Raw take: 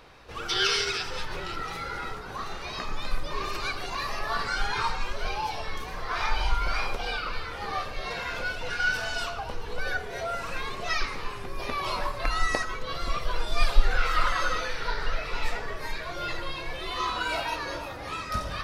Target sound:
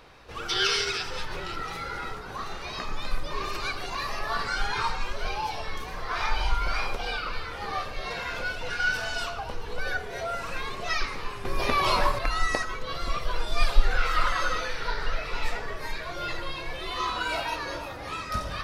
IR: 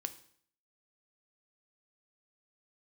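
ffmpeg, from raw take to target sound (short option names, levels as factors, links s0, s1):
-filter_complex "[0:a]asettb=1/sr,asplit=3[s0][s1][s2];[s0]atrim=end=11.454[s3];[s1]atrim=start=11.45:end=12.19,asetpts=PTS-STARTPTS,afade=t=in:d=0.004:c=qsin,afade=t=out:st=0.736:d=0.004:c=qsin,acontrast=74[s4];[s2]atrim=start=12.186[s5];[s3][s4]acrossfade=d=0.004:c1=hsin:c2=qsin[s6];[s6][s5]acrossfade=d=0.004:c1=qsin:c2=hsin"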